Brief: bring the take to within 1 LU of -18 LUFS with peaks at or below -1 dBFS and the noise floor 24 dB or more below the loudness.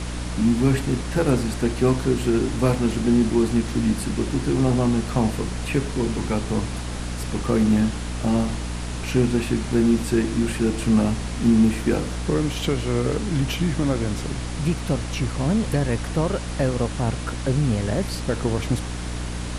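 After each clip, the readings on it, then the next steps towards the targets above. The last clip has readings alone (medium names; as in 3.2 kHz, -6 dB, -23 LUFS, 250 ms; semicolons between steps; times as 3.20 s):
hum 60 Hz; highest harmonic 300 Hz; hum level -28 dBFS; noise floor -30 dBFS; noise floor target -47 dBFS; loudness -23.0 LUFS; peak level -7.0 dBFS; loudness target -18.0 LUFS
-> de-hum 60 Hz, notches 5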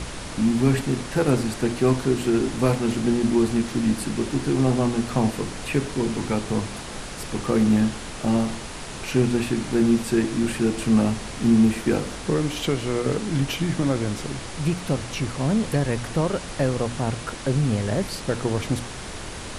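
hum not found; noise floor -35 dBFS; noise floor target -48 dBFS
-> noise print and reduce 13 dB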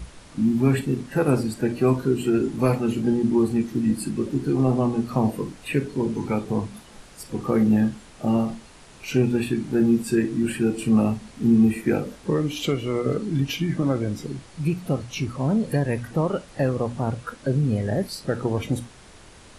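noise floor -47 dBFS; noise floor target -48 dBFS
-> noise print and reduce 6 dB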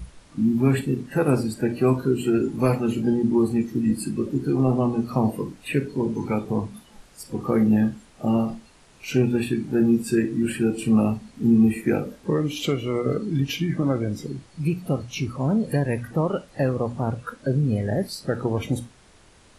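noise floor -53 dBFS; loudness -24.0 LUFS; peak level -7.5 dBFS; loudness target -18.0 LUFS
-> trim +6 dB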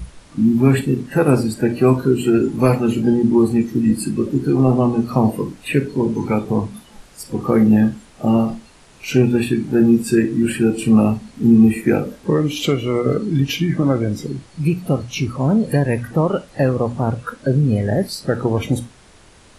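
loudness -18.0 LUFS; peak level -1.5 dBFS; noise floor -47 dBFS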